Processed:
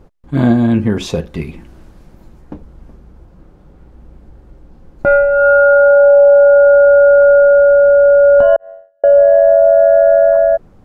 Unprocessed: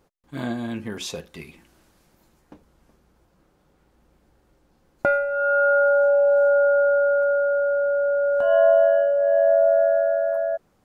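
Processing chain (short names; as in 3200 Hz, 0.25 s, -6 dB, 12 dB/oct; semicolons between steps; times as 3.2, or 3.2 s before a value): 8.56–9.04 gate -10 dBFS, range -55 dB; tilt -3 dB/oct; maximiser +12.5 dB; gain -1 dB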